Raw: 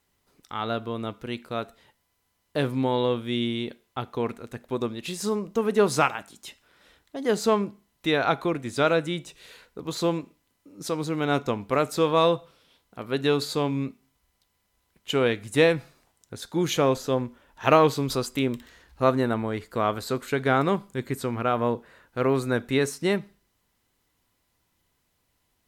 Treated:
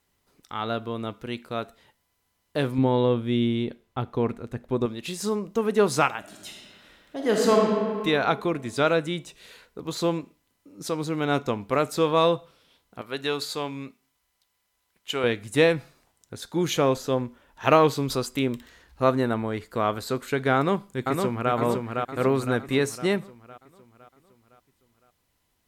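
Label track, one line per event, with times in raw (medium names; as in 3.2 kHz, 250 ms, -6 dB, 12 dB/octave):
2.780000	4.860000	tilt EQ -2 dB/octave
6.190000	7.630000	reverb throw, RT60 2.1 s, DRR -1 dB
13.010000	15.240000	bass shelf 440 Hz -11 dB
20.550000	21.530000	echo throw 510 ms, feedback 50%, level -3.5 dB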